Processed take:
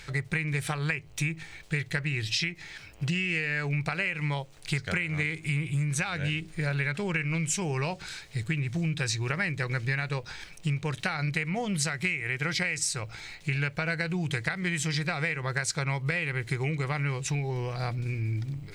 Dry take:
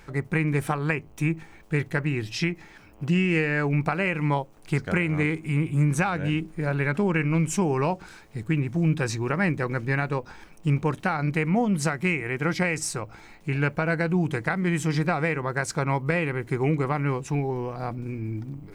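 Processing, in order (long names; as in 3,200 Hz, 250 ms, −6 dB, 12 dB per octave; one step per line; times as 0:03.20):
graphic EQ with 10 bands 125 Hz +6 dB, 250 Hz −10 dB, 1,000 Hz −5 dB, 2,000 Hz +6 dB, 4,000 Hz +11 dB, 8,000 Hz +7 dB
downward compressor, threshold −26 dBFS, peak gain reduction 11.5 dB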